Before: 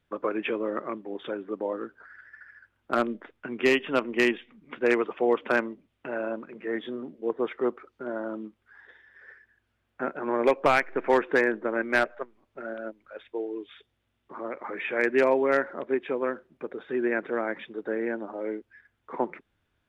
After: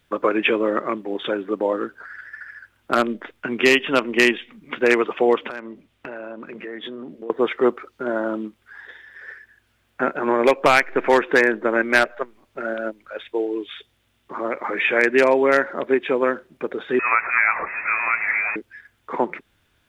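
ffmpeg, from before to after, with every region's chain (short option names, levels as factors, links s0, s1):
-filter_complex "[0:a]asettb=1/sr,asplit=3[s0][s1][s2];[s0]atrim=end=5.484[s3];[s1]atrim=start=5.48:end=7.3,asetpts=PTS-STARTPTS,afade=t=in:d=0.004:c=qsin,afade=t=out:st=1.816:d=0.004:c=qsin,highshelf=f=5100:g=-6,acompressor=threshold=0.01:ratio=5:attack=3.2:release=140:knee=1:detection=peak[s4];[s2]atrim=start=7.296[s5];[s3][s4]acrossfade=d=0.004:c1=hsin:c2=qsin[s6];[s6][s5]acrossfade=d=0.004:c1=qsin:c2=hsin,asettb=1/sr,asplit=3[s7][s8][s9];[s7]atrim=end=16.994[s10];[s8]atrim=start=16.99:end=18.56,asetpts=PTS-STARTPTS,afade=t=in:d=0.004:c=qsin,afade=t=out:st=1.566:d=0.004:c=qsin,aeval=exprs='val(0)+0.5*0.0211*sgn(val(0))':c=same,highpass=f=920:t=q:w=1.9,lowpass=f=2500:t=q:w=0.5098,lowpass=f=2500:t=q:w=0.6013,lowpass=f=2500:t=q:w=0.9,lowpass=f=2500:t=q:w=2.563,afreqshift=-2900[s11];[s9]atrim=start=18.556[s12];[s10][s11]acrossfade=d=0.004:c1=hsin:c2=qsin[s13];[s13][s12]acrossfade=d=0.004:c1=qsin:c2=hsin,alimiter=limit=0.15:level=0:latency=1:release=270,highshelf=f=2300:g=8.5,volume=2.66"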